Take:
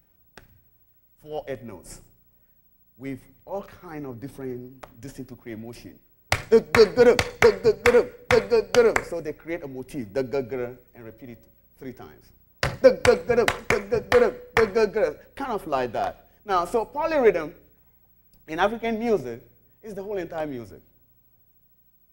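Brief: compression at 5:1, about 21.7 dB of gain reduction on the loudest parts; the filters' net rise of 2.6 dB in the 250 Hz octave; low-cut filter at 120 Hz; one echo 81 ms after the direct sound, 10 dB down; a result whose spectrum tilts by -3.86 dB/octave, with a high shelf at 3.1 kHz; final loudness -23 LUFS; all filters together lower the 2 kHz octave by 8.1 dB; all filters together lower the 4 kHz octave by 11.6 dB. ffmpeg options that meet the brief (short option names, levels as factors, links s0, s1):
-af "highpass=120,equalizer=f=250:t=o:g=3.5,equalizer=f=2000:t=o:g=-6.5,highshelf=f=3100:g=-6.5,equalizer=f=4000:t=o:g=-8,acompressor=threshold=0.0178:ratio=5,aecho=1:1:81:0.316,volume=6.31"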